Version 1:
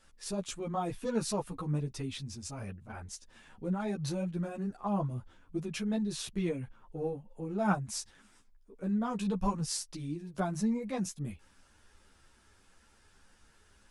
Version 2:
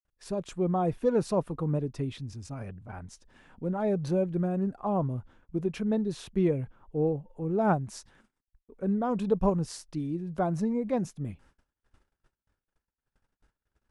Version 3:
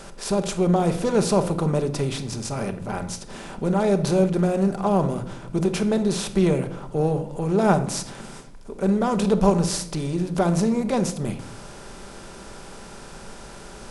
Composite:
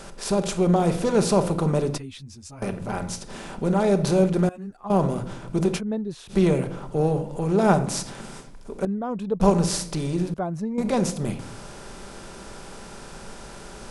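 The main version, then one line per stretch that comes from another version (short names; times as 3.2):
3
1.98–2.62 from 1
4.49–4.9 from 1
5.78–6.31 from 2, crossfade 0.06 s
8.85–9.4 from 2
10.34–10.78 from 2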